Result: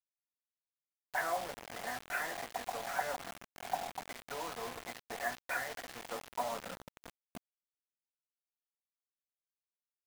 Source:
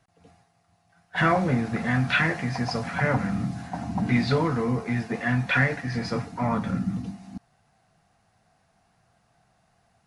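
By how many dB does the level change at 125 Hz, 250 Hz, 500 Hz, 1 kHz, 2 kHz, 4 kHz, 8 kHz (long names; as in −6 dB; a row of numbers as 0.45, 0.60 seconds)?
−33.5, −27.5, −12.0, −9.0, −13.5, −10.5, +0.5 decibels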